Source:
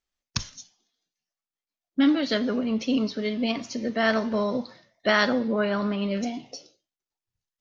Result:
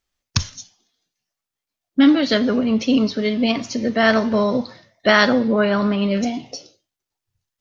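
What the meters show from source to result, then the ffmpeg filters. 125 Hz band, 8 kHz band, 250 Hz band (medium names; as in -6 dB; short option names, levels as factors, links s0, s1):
+9.0 dB, no reading, +7.5 dB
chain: -af "equalizer=f=96:t=o:w=0.71:g=8,volume=2.24"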